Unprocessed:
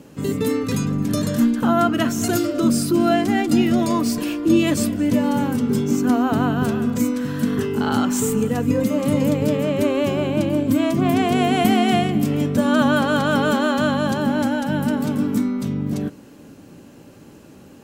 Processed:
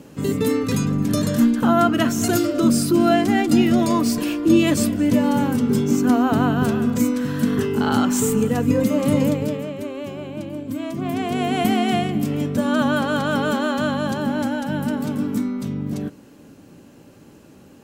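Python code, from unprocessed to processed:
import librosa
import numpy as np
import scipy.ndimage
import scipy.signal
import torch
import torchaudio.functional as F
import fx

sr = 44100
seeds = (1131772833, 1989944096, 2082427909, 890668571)

y = fx.gain(x, sr, db=fx.line((9.21, 1.0), (9.8, -10.5), (10.64, -10.5), (11.61, -2.5)))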